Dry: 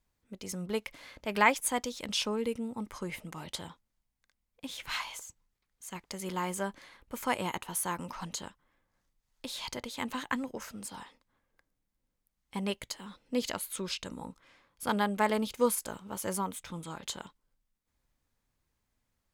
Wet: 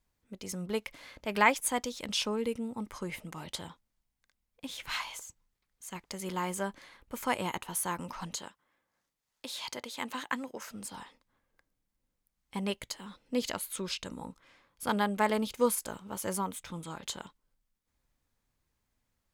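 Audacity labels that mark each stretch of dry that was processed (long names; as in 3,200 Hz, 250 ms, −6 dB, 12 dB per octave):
8.360000	10.720000	high-pass filter 320 Hz 6 dB per octave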